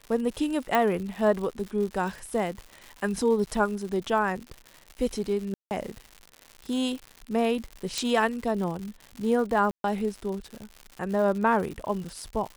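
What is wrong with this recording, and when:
crackle 160 per s -34 dBFS
0.75 s: pop -10 dBFS
5.54–5.71 s: dropout 169 ms
7.98 s: pop -14 dBFS
9.71–9.84 s: dropout 132 ms

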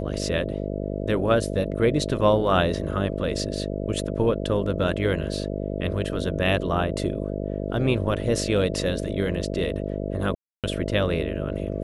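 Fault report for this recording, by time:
buzz 50 Hz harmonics 13 -29 dBFS
10.35–10.64 s: dropout 287 ms

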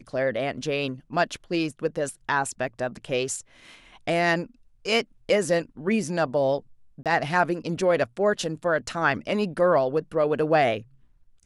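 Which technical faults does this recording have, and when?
7.03–7.06 s: dropout 27 ms

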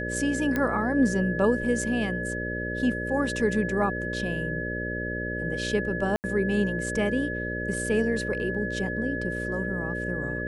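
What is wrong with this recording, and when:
buzz 60 Hz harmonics 10 -33 dBFS
whine 1.7 kHz -32 dBFS
0.56 s: pop -14 dBFS
6.16–6.24 s: dropout 79 ms

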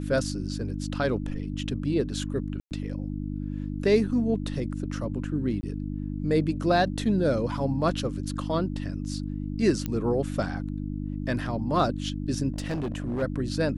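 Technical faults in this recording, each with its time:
hum 50 Hz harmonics 6 -32 dBFS
2.60–2.71 s: dropout 109 ms
5.61–5.63 s: dropout 20 ms
9.86 s: pop -16 dBFS
12.52–13.23 s: clipped -26 dBFS

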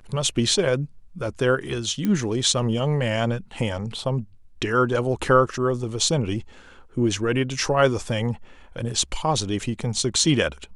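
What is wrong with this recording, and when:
2.05 s: pop -13 dBFS

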